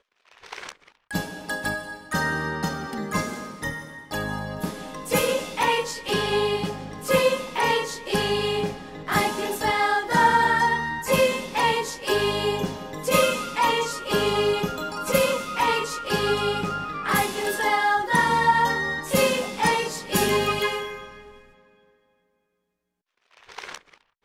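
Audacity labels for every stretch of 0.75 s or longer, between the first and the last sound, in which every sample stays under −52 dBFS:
21.910000	23.310000	silence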